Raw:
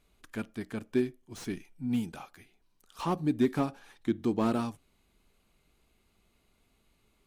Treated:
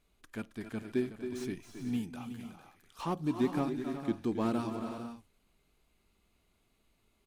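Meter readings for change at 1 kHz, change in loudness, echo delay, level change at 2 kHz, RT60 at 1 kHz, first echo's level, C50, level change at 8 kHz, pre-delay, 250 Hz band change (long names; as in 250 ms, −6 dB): −3.0 dB, −3.5 dB, 270 ms, −3.0 dB, no reverb audible, −9.5 dB, no reverb audible, −3.0 dB, no reverb audible, −3.0 dB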